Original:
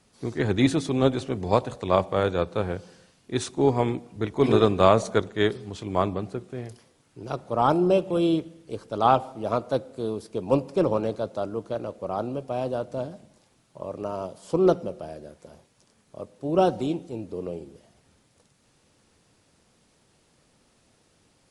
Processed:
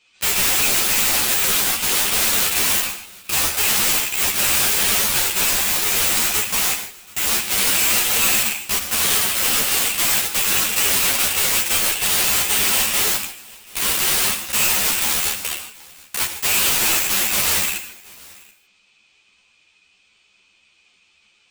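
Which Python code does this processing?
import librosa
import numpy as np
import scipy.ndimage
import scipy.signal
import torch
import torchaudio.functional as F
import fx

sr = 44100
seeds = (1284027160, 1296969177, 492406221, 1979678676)

p1 = fx.band_shuffle(x, sr, order='2413')
p2 = fx.peak_eq(p1, sr, hz=4400.0, db=8.0, octaves=1.4)
p3 = fx.rider(p2, sr, range_db=3, speed_s=0.5)
p4 = fx.leveller(p3, sr, passes=5)
p5 = (np.mod(10.0 ** (17.5 / 20.0) * p4 + 1.0, 2.0) - 1.0) / 10.0 ** (17.5 / 20.0)
p6 = fx.formant_shift(p5, sr, semitones=-4)
p7 = p6 + fx.echo_single(p6, sr, ms=731, db=-23.5, dry=0)
p8 = fx.rev_gated(p7, sr, seeds[0], gate_ms=180, shape='flat', drr_db=6.5)
p9 = fx.ensemble(p8, sr)
y = p9 * 10.0 ** (8.0 / 20.0)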